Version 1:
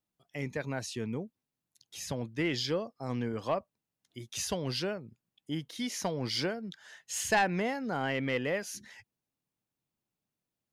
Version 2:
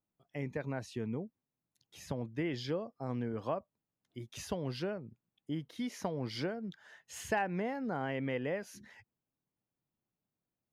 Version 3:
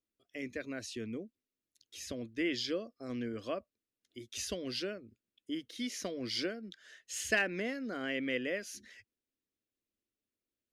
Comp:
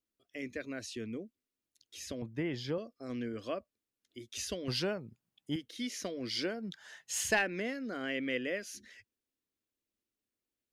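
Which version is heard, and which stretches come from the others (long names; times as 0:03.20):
3
0:02.22–0:02.78: punch in from 2
0:04.68–0:05.56: punch in from 1
0:06.52–0:07.35: punch in from 1, crossfade 0.24 s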